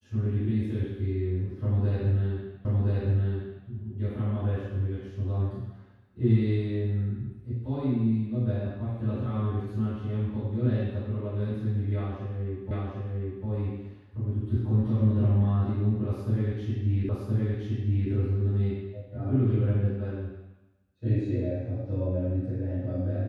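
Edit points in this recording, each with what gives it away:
2.65 repeat of the last 1.02 s
12.71 repeat of the last 0.75 s
17.09 repeat of the last 1.02 s

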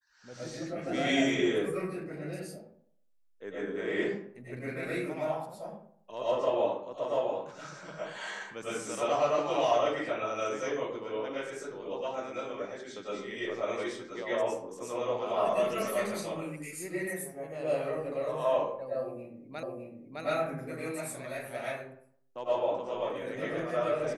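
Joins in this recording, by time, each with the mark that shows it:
19.63 repeat of the last 0.61 s

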